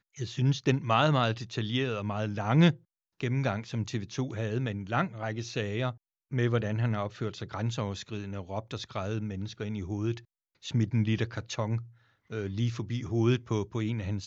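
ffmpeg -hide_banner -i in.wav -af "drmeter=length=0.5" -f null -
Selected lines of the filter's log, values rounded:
Channel 1: DR: 12.3
Overall DR: 12.3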